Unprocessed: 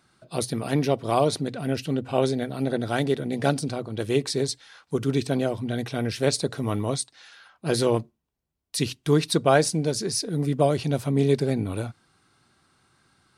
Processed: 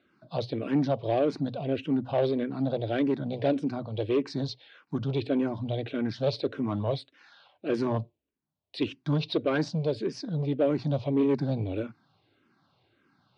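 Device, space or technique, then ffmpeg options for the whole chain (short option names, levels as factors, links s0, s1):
barber-pole phaser into a guitar amplifier: -filter_complex "[0:a]asplit=2[s0][s1];[s1]afreqshift=-1.7[s2];[s0][s2]amix=inputs=2:normalize=1,asoftclip=type=tanh:threshold=0.0944,highpass=110,equalizer=f=110:t=q:w=4:g=4,equalizer=f=290:t=q:w=4:g=5,equalizer=f=580:t=q:w=4:g=5,equalizer=f=1300:t=q:w=4:g=-4,equalizer=f=1900:t=q:w=4:g=-5,lowpass=f=4000:w=0.5412,lowpass=f=4000:w=1.3066"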